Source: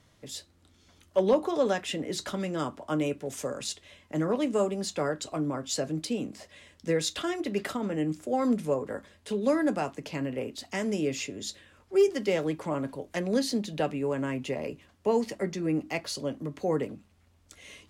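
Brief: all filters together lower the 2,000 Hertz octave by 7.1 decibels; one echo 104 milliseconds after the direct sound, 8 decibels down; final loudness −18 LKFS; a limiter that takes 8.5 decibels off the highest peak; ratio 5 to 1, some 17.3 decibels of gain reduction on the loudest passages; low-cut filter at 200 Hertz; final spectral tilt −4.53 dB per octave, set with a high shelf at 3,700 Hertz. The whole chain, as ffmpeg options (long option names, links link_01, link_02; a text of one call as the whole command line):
ffmpeg -i in.wav -af "highpass=200,equalizer=frequency=2000:width_type=o:gain=-7,highshelf=frequency=3700:gain=-7,acompressor=threshold=-39dB:ratio=5,alimiter=level_in=12dB:limit=-24dB:level=0:latency=1,volume=-12dB,aecho=1:1:104:0.398,volume=27dB" out.wav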